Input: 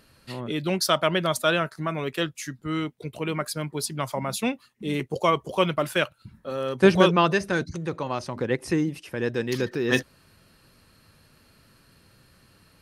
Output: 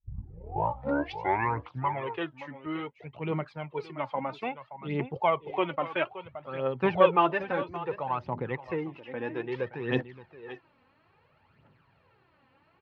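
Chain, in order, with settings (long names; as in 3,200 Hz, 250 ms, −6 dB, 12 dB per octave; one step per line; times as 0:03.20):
turntable start at the beginning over 2.15 s
on a send: single-tap delay 573 ms −14 dB
on the sum: phase shifter 0.6 Hz, delay 4 ms, feedback 60%
loudspeaker in its box 110–2,700 Hz, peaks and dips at 210 Hz −7 dB, 300 Hz −4 dB, 850 Hz +9 dB, 1,600 Hz −4 dB
level −6 dB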